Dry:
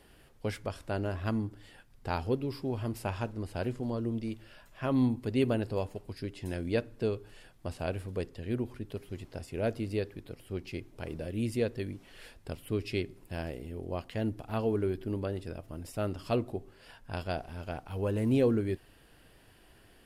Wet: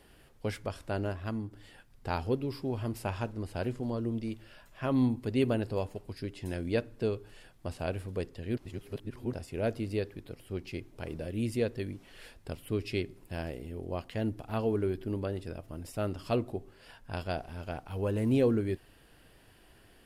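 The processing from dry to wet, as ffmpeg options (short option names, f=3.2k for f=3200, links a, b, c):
-filter_complex "[0:a]asplit=5[a][b][c][d][e];[a]atrim=end=1.132[f];[b]atrim=start=1.128:end=1.532,asetpts=PTS-STARTPTS,volume=-4dB[g];[c]atrim=start=1.528:end=8.572[h];[d]atrim=start=8.568:end=9.332,asetpts=PTS-STARTPTS,areverse[i];[e]atrim=start=9.328[j];[f][g]acrossfade=d=0.004:c1=hsin:c2=hsin[k];[k][h]acrossfade=d=0.004:c1=hsin:c2=hsin[l];[l][i]acrossfade=d=0.004:c1=hsin:c2=hsin[m];[m][j]acrossfade=d=0.004:c1=hsin:c2=hsin"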